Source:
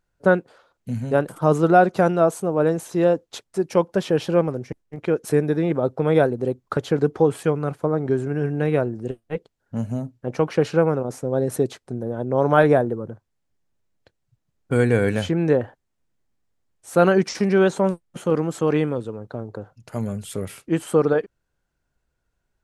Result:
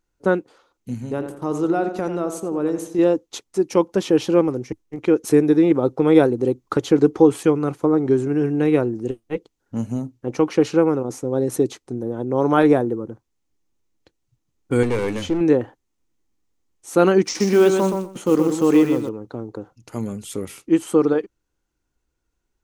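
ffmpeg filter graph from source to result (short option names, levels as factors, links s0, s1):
-filter_complex "[0:a]asettb=1/sr,asplit=3[s0][s1][s2];[s0]atrim=end=0.944[s3];[s1]atrim=start=0.94:end=2.99,asetpts=PTS-STARTPTS,afade=t=in:d=0.004:c=qsin,afade=t=out:st=2.046:d=0.004:c=qsin,agate=range=0.0224:threshold=0.0178:ratio=3:release=100:detection=peak,acompressor=threshold=0.0398:ratio=1.5:attack=3.2:release=140:knee=1:detection=peak,asplit=2[s4][s5];[s5]adelay=86,lowpass=f=3100:p=1,volume=0.376,asplit=2[s6][s7];[s7]adelay=86,lowpass=f=3100:p=1,volume=0.42,asplit=2[s8][s9];[s9]adelay=86,lowpass=f=3100:p=1,volume=0.42,asplit=2[s10][s11];[s11]adelay=86,lowpass=f=3100:p=1,volume=0.42,asplit=2[s12][s13];[s13]adelay=86,lowpass=f=3100:p=1,volume=0.42[s14];[s4][s6][s8][s10][s12][s14]amix=inputs=6:normalize=0,atrim=end_sample=90405[s15];[s2]atrim=start=2.986[s16];[s3][s15]acrossfade=d=0.004:c1=hsin:c2=qsin[s17];[s17][s16]acrossfade=d=0.004:c1=qsin:c2=hsin,asettb=1/sr,asplit=3[s18][s19][s20];[s18]atrim=end=14.834[s21];[s19]atrim=start=14.83:end=15.41,asetpts=PTS-STARTPTS,afade=t=in:d=0.004:c=qsin,afade=t=out:st=0.576:d=0.004:c=qsin,highshelf=f=5600:g=-4,aeval=exprs='clip(val(0),-1,0.0668)':c=same[s22];[s20]atrim=start=15.406[s23];[s21][s22]acrossfade=d=0.004:c1=hsin:c2=qsin[s24];[s24][s23]acrossfade=d=0.004:c1=qsin:c2=hsin,asettb=1/sr,asplit=3[s25][s26][s27];[s25]atrim=end=17.244[s28];[s26]atrim=start=17.24:end=19.09,asetpts=PTS-STARTPTS,afade=t=in:d=0.004:c=qsin,afade=t=out:st=1.846:d=0.004:c=qsin,acrusher=bits=7:mode=log:mix=0:aa=0.000001,aecho=1:1:123|246|369:0.531|0.0796|0.0119,atrim=end_sample=81585[s29];[s27]atrim=start=19.086[s30];[s28][s29]acrossfade=d=0.004:c1=hsin:c2=qsin[s31];[s31][s30]acrossfade=d=0.004:c1=qsin:c2=hsin,dynaudnorm=f=680:g=11:m=3.76,equalizer=f=100:t=o:w=0.33:g=-7,equalizer=f=160:t=o:w=0.33:g=-7,equalizer=f=315:t=o:w=0.33:g=7,equalizer=f=630:t=o:w=0.33:g=-8,equalizer=f=1600:t=o:w=0.33:g=-6,equalizer=f=6300:t=o:w=0.33:g=5"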